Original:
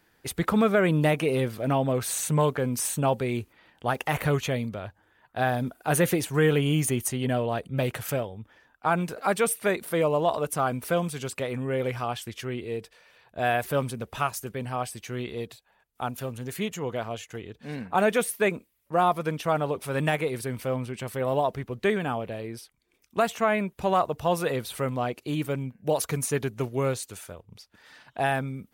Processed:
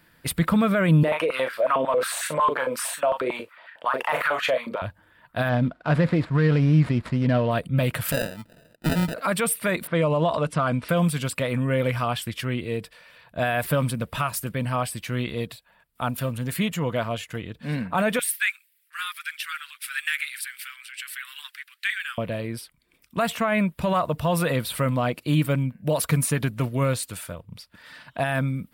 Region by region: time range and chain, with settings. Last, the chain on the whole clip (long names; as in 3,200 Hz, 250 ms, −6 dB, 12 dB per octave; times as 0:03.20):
0:01.03–0:04.82: high-shelf EQ 6,500 Hz −11 dB + double-tracking delay 38 ms −7.5 dB + high-pass on a step sequencer 11 Hz 400–1,600 Hz
0:05.49–0:07.51: running median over 15 samples + low-pass filter 4,500 Hz
0:08.12–0:09.14: high-pass filter 180 Hz + sample-rate reduction 1,100 Hz
0:09.87–0:10.89: low-pass filter 7,900 Hz + low-pass that shuts in the quiet parts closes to 1,900 Hz, open at −20.5 dBFS
0:18.19–0:22.18: Butterworth high-pass 1,500 Hz 48 dB per octave + phase shifter 1.9 Hz, delay 4.9 ms, feedback 27%
whole clip: notch filter 790 Hz, Q 5.2; brickwall limiter −20 dBFS; thirty-one-band graphic EQ 160 Hz +5 dB, 400 Hz −11 dB, 6,300 Hz −10 dB; level +7 dB